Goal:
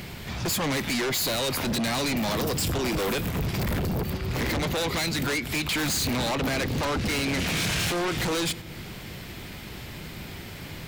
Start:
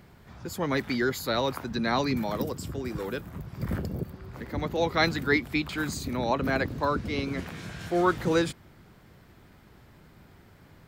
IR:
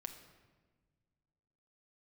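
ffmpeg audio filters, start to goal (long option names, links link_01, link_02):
-filter_complex "[0:a]highshelf=frequency=1900:width_type=q:width=1.5:gain=7,agate=range=-8dB:threshold=-40dB:ratio=16:detection=peak,acompressor=threshold=-37dB:ratio=10,asoftclip=type=tanh:threshold=-38.5dB,asplit=2[link_01][link_02];[1:a]atrim=start_sample=2205[link_03];[link_02][link_03]afir=irnorm=-1:irlink=0,volume=-9.5dB[link_04];[link_01][link_04]amix=inputs=2:normalize=0,aeval=exprs='0.0631*sin(PI/2*7.08*val(0)/0.0631)':channel_layout=same"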